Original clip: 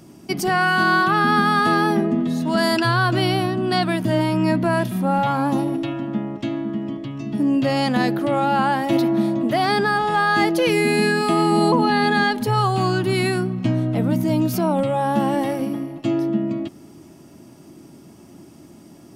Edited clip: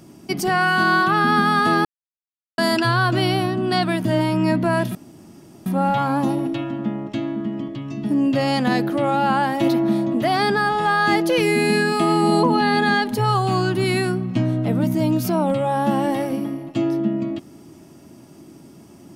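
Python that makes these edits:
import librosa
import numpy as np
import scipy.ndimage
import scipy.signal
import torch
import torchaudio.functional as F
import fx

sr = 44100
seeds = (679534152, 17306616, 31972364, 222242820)

y = fx.edit(x, sr, fx.silence(start_s=1.85, length_s=0.73),
    fx.insert_room_tone(at_s=4.95, length_s=0.71), tone=tone)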